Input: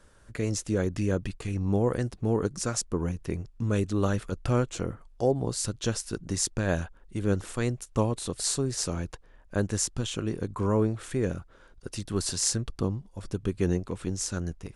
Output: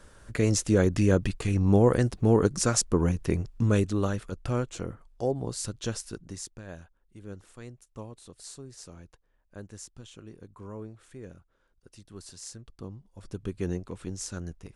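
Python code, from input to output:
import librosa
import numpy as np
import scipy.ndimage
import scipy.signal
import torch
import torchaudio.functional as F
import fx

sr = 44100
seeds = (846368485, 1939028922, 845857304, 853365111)

y = fx.gain(x, sr, db=fx.line((3.62, 5.0), (4.17, -3.5), (6.04, -3.5), (6.63, -16.0), (12.61, -16.0), (13.39, -5.0)))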